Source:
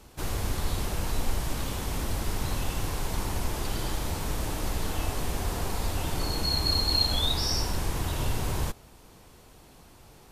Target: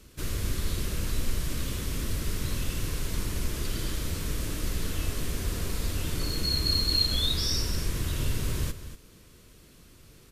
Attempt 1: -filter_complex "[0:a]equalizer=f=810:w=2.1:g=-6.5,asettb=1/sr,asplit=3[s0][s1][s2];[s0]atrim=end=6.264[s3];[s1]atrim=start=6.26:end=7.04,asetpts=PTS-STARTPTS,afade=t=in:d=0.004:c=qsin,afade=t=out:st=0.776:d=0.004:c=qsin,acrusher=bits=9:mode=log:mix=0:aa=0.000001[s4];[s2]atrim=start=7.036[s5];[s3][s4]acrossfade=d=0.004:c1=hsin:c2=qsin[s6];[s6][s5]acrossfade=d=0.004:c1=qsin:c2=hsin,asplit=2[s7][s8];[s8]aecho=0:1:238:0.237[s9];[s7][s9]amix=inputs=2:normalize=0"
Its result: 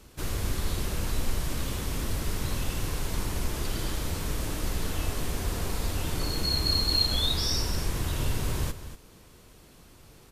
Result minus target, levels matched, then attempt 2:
1 kHz band +5.0 dB
-filter_complex "[0:a]equalizer=f=810:w=2.1:g=-17,asettb=1/sr,asplit=3[s0][s1][s2];[s0]atrim=end=6.264[s3];[s1]atrim=start=6.26:end=7.04,asetpts=PTS-STARTPTS,afade=t=in:d=0.004:c=qsin,afade=t=out:st=0.776:d=0.004:c=qsin,acrusher=bits=9:mode=log:mix=0:aa=0.000001[s4];[s2]atrim=start=7.036[s5];[s3][s4]acrossfade=d=0.004:c1=hsin:c2=qsin[s6];[s6][s5]acrossfade=d=0.004:c1=qsin:c2=hsin,asplit=2[s7][s8];[s8]aecho=0:1:238:0.237[s9];[s7][s9]amix=inputs=2:normalize=0"

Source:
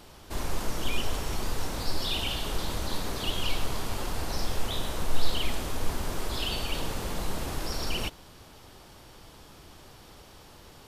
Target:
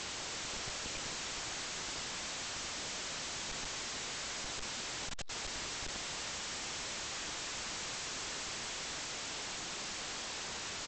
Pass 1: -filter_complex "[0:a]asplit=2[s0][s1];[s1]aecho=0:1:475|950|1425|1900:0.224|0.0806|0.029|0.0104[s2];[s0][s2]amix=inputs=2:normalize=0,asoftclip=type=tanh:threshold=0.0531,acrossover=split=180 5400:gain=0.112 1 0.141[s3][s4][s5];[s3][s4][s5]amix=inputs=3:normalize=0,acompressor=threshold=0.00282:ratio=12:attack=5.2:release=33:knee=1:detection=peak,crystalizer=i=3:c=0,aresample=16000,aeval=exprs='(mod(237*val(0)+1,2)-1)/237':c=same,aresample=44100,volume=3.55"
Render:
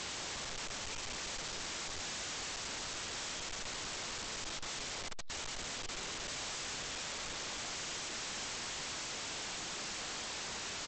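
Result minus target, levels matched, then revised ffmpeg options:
compression: peak gain reduction +7 dB
-filter_complex "[0:a]asplit=2[s0][s1];[s1]aecho=0:1:475|950|1425|1900:0.224|0.0806|0.029|0.0104[s2];[s0][s2]amix=inputs=2:normalize=0,asoftclip=type=tanh:threshold=0.0531,acrossover=split=180 5400:gain=0.112 1 0.141[s3][s4][s5];[s3][s4][s5]amix=inputs=3:normalize=0,acompressor=threshold=0.00668:ratio=12:attack=5.2:release=33:knee=1:detection=peak,crystalizer=i=3:c=0,aresample=16000,aeval=exprs='(mod(237*val(0)+1,2)-1)/237':c=same,aresample=44100,volume=3.55"

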